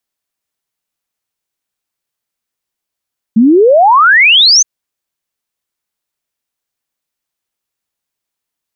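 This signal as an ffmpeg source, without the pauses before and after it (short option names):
-f lavfi -i "aevalsrc='0.708*clip(min(t,1.27-t)/0.01,0,1)*sin(2*PI*210*1.27/log(6500/210)*(exp(log(6500/210)*t/1.27)-1))':d=1.27:s=44100"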